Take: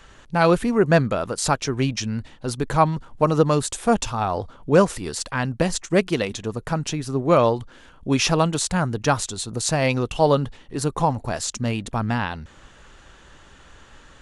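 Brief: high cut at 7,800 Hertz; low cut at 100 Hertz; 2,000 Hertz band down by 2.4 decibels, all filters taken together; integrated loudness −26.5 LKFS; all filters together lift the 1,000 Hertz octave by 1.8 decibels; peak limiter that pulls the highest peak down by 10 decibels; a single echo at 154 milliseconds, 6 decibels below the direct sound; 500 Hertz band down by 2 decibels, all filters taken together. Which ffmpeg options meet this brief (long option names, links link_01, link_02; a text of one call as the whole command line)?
ffmpeg -i in.wav -af "highpass=100,lowpass=7800,equalizer=frequency=500:width_type=o:gain=-3.5,equalizer=frequency=1000:width_type=o:gain=4.5,equalizer=frequency=2000:width_type=o:gain=-5,alimiter=limit=-13.5dB:level=0:latency=1,aecho=1:1:154:0.501,volume=-1.5dB" out.wav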